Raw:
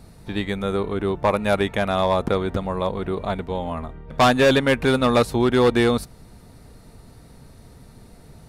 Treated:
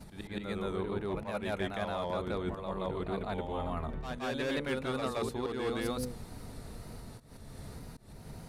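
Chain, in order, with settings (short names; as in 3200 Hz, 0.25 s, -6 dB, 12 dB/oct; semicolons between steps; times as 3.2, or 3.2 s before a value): notches 60/120/180/240/300/360/420/480/540 Hz; wow and flutter 89 cents; auto swell 0.216 s; reverse; compressor 6:1, threshold -34 dBFS, peak gain reduction 19.5 dB; reverse; expander -51 dBFS; on a send: reverse echo 0.173 s -3.5 dB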